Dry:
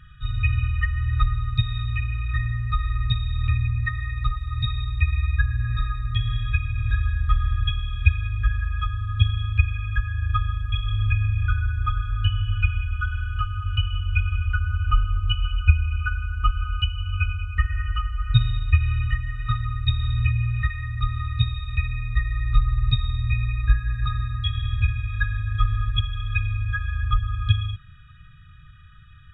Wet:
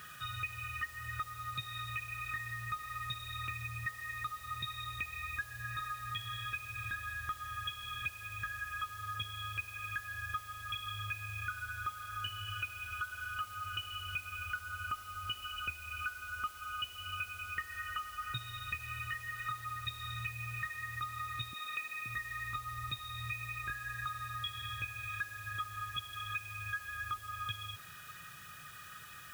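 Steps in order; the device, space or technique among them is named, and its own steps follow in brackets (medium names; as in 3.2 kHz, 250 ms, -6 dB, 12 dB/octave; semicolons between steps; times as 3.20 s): 21.53–22.06 s: high-pass 230 Hz 24 dB/octave; baby monitor (band-pass 350–3000 Hz; compression, threshold -45 dBFS, peak gain reduction 22.5 dB; white noise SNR 15 dB); trim +7 dB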